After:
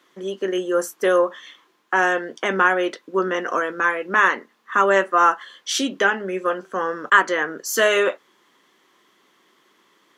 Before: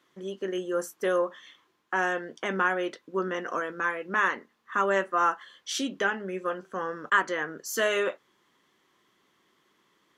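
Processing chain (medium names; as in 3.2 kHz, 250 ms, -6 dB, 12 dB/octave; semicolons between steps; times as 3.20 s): high-pass 220 Hz 12 dB/octave; trim +8.5 dB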